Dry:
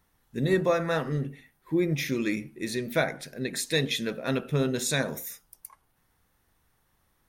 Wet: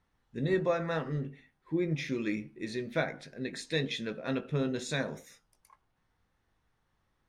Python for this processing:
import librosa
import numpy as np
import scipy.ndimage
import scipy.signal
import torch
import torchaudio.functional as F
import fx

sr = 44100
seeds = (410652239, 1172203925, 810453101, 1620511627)

y = fx.air_absorb(x, sr, metres=93.0)
y = fx.doubler(y, sr, ms=19.0, db=-11.5)
y = F.gain(torch.from_numpy(y), -5.0).numpy()